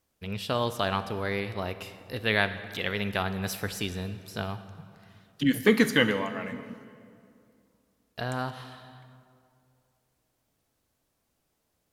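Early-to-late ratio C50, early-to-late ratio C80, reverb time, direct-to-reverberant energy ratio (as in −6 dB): 12.0 dB, 13.0 dB, 2.5 s, 11.5 dB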